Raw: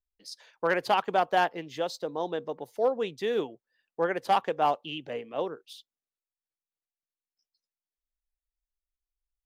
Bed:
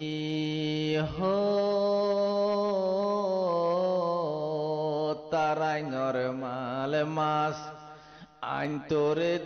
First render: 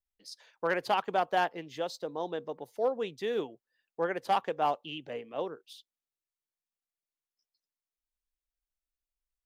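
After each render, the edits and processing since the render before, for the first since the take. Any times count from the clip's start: trim -3.5 dB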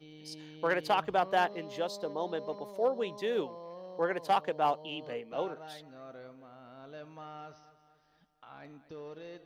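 add bed -19 dB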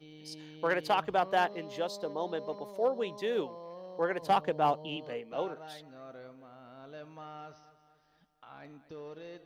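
4.22–4.97 s: bass shelf 230 Hz +10.5 dB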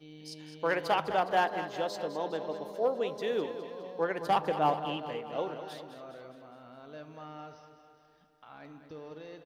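on a send: feedback delay 206 ms, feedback 59%, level -11 dB; on the sum: FDN reverb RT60 0.98 s, low-frequency decay 1×, high-frequency decay 0.3×, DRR 14 dB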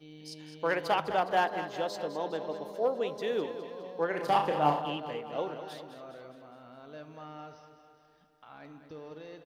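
4.09–4.82 s: flutter echo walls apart 5.8 m, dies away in 0.38 s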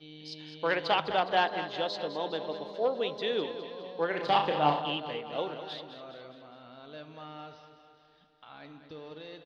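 resonant low-pass 3.8 kHz, resonance Q 3.1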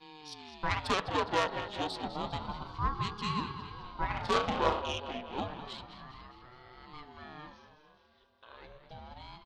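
self-modulated delay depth 0.11 ms; ring modulator with a swept carrier 420 Hz, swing 50%, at 0.3 Hz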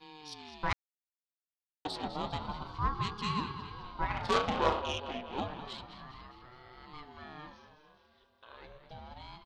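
0.73–1.85 s: mute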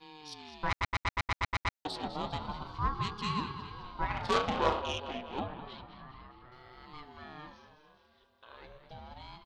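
0.69 s: stutter in place 0.12 s, 9 plays; 5.39–6.52 s: distance through air 250 m

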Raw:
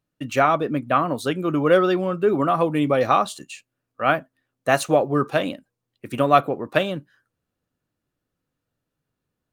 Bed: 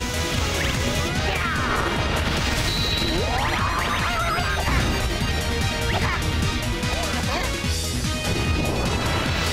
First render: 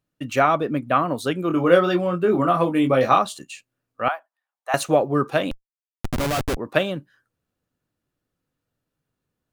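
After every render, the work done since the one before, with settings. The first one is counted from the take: 1.48–3.19 s: doubling 23 ms -5 dB; 4.08–4.74 s: ladder high-pass 750 Hz, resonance 60%; 5.51–6.57 s: Schmitt trigger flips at -25.5 dBFS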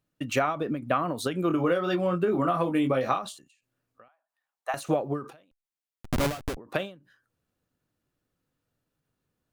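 compression 10:1, threshold -21 dBFS, peak gain reduction 12.5 dB; endings held to a fixed fall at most 140 dB/s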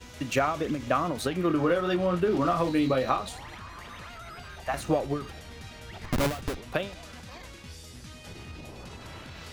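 add bed -20.5 dB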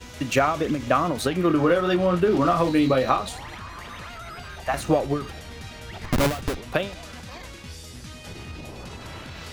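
trim +5 dB

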